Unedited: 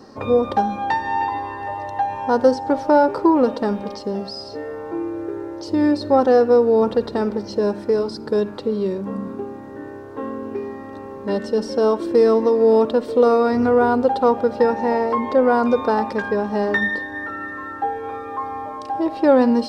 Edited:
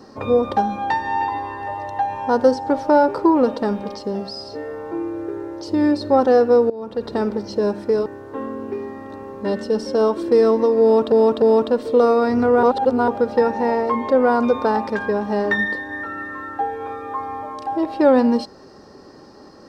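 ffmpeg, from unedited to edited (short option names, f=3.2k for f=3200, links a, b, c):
-filter_complex "[0:a]asplit=7[a][b][c][d][e][f][g];[a]atrim=end=6.7,asetpts=PTS-STARTPTS,afade=t=out:st=6.696:d=0.004:c=hsin:silence=0.133352[h];[b]atrim=start=6.7:end=8.062,asetpts=PTS-STARTPTS,afade=t=in:d=0.42:c=qua:silence=0.133352[i];[c]atrim=start=9.888:end=12.952[j];[d]atrim=start=12.648:end=12.952[k];[e]atrim=start=12.648:end=13.862[l];[f]atrim=start=13.858:end=14.312,asetpts=PTS-STARTPTS,areverse[m];[g]atrim=start=14.308[n];[h][i]concat=n=2:v=0:a=1[o];[o][j]acrossfade=d=0.004:c1=hsin:c2=hsin[p];[p][k]acrossfade=d=0.004:c1=hsin:c2=hsin[q];[q][l]acrossfade=d=0.004:c1=hsin:c2=hsin[r];[r][m]acrossfade=d=0.004:c1=hsin:c2=hsin[s];[s][n]acrossfade=d=0.004:c1=hsin:c2=hsin"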